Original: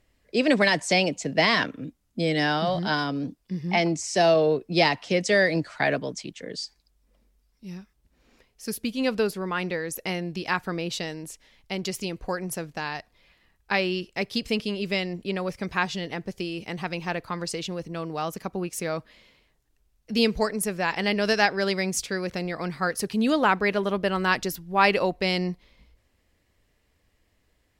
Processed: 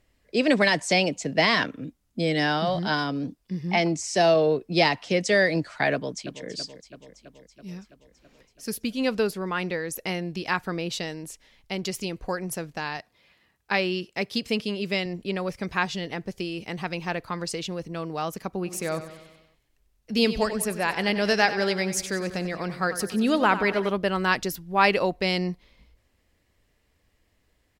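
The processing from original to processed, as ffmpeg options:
-filter_complex "[0:a]asplit=2[a][b];[b]afade=t=in:st=5.93:d=0.01,afade=t=out:st=6.47:d=0.01,aecho=0:1:330|660|990|1320|1650|1980|2310|2640|2970|3300:0.251189|0.175832|0.123082|0.0861577|0.0603104|0.0422173|0.0295521|0.0206865|0.0144805|0.0101364[c];[a][c]amix=inputs=2:normalize=0,asettb=1/sr,asplit=3[d][e][f];[d]atrim=end=12.974[g];[e]atrim=start=12.97:end=15.06,asetpts=PTS-STARTPTS,afade=t=in:d=0.004:c=qsin,afade=t=out:st=2.086:d=0.004:c=qsin,highpass=97[h];[f]atrim=start=15.056[i];[g][h]acrossfade=d=0.004:c1=hsin:c2=qsin[j];[j][i]acrossfade=d=0.004:c1=qsin:c2=hsin,asplit=3[k][l][m];[k]afade=t=out:st=18.65:d=0.02[n];[l]aecho=1:1:94|188|282|376|470|564:0.237|0.13|0.0717|0.0395|0.0217|0.0119,afade=t=in:st=18.65:d=0.02,afade=t=out:st=23.89:d=0.02[o];[m]afade=t=in:st=23.89:d=0.02[p];[n][o][p]amix=inputs=3:normalize=0"

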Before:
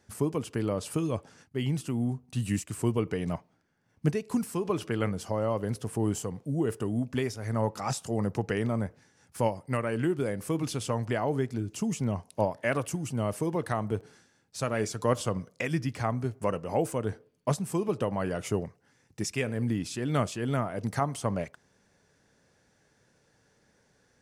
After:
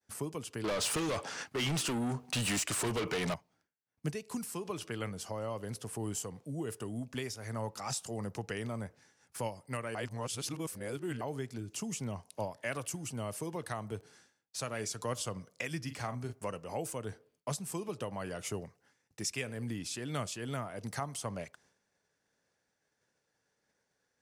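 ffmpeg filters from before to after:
-filter_complex "[0:a]asettb=1/sr,asplit=3[a][b][c];[a]atrim=end=0.644[d];[b]atrim=start=0.64:end=3.34,asetpts=PTS-STARTPTS,afade=t=in:d=0.004:c=qsin,afade=t=out:st=2.696:d=0.004:c=qsin,asplit=2[e][f];[f]highpass=f=720:p=1,volume=31dB,asoftclip=type=tanh:threshold=-14.5dB[g];[e][g]amix=inputs=2:normalize=0,lowpass=f=2.2k:p=1,volume=-6dB[h];[c]atrim=start=3.336[i];[d][h]acrossfade=d=0.004:c1=hsin:c2=qsin[j];[j][i]acrossfade=d=0.004:c1=qsin:c2=hsin,asettb=1/sr,asplit=3[k][l][m];[k]atrim=end=15.824[n];[l]atrim=start=15.82:end=16.33,asetpts=PTS-STARTPTS,afade=t=in:d=0.004:c=qsin,afade=t=out:st=0.506:d=0.004:c=qsin,asplit=2[o][p];[p]adelay=41,volume=-9dB[q];[o][q]amix=inputs=2:normalize=0,atrim=end_sample=22491[r];[m]atrim=start=16.326[s];[n][r]acrossfade=d=0.004:c1=hsin:c2=qsin[t];[t][s]acrossfade=d=0.004:c1=qsin:c2=hsin,asplit=3[u][v][w];[u]atrim=end=9.952[x];[v]atrim=start=9.948:end=11.212,asetpts=PTS-STARTPTS,areverse[y];[w]atrim=start=11.208[z];[x][y]acrossfade=d=0.004:c1=hsin:c2=hsin[aa];[aa][z]acrossfade=d=0.004:c1=hsin:c2=hsin,agate=range=-33dB:threshold=-58dB:ratio=3:detection=peak,lowshelf=f=290:g=-10,acrossover=split=170|3000[ab][ac][ad];[ac]acompressor=threshold=-49dB:ratio=1.5[ae];[ab][ae][ad]amix=inputs=3:normalize=0"

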